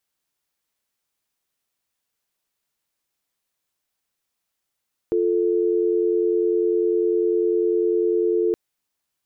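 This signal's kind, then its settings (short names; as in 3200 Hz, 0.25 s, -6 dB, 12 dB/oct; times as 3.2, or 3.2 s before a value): call progress tone dial tone, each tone -20 dBFS 3.42 s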